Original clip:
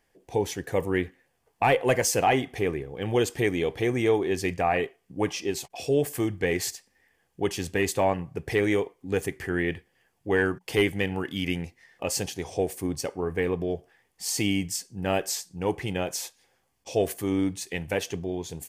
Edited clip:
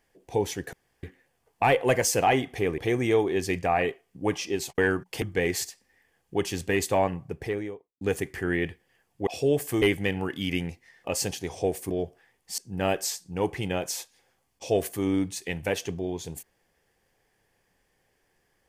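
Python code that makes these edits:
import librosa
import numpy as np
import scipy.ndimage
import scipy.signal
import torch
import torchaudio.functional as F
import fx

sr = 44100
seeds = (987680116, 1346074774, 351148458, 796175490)

y = fx.studio_fade_out(x, sr, start_s=8.14, length_s=0.93)
y = fx.edit(y, sr, fx.room_tone_fill(start_s=0.73, length_s=0.3),
    fx.cut(start_s=2.78, length_s=0.95),
    fx.swap(start_s=5.73, length_s=0.55, other_s=10.33, other_length_s=0.44),
    fx.cut(start_s=12.85, length_s=0.76),
    fx.cut(start_s=14.29, length_s=0.54), tone=tone)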